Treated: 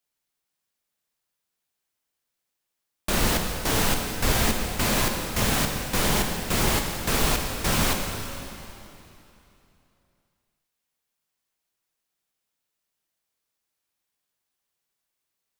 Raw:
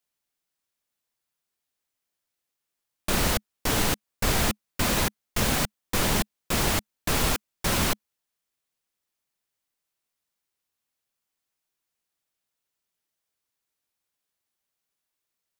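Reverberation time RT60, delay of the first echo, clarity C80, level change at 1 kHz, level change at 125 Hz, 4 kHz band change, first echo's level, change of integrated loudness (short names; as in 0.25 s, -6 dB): 3.0 s, none, 4.5 dB, +2.0 dB, +2.0 dB, +2.0 dB, none, +1.5 dB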